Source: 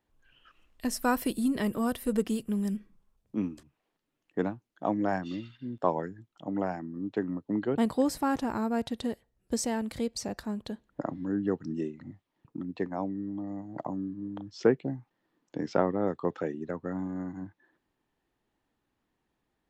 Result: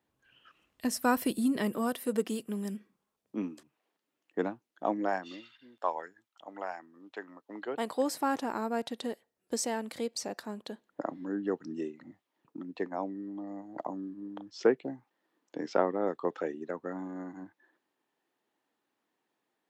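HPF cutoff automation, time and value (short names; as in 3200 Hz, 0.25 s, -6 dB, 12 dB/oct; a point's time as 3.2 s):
1.24 s 110 Hz
1.92 s 270 Hz
4.85 s 270 Hz
5.72 s 800 Hz
7.41 s 800 Hz
8.2 s 310 Hz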